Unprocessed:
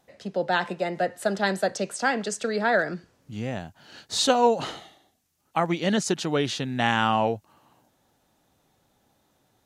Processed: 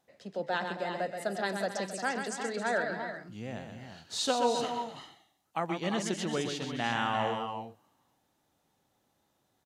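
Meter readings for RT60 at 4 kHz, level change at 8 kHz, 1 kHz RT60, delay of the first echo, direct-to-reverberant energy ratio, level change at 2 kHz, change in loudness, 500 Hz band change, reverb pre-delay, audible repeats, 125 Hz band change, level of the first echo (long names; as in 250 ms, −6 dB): no reverb audible, −6.5 dB, no reverb audible, 128 ms, no reverb audible, −7.0 dB, −7.5 dB, −7.5 dB, no reverb audible, 4, −8.5 dB, −6.5 dB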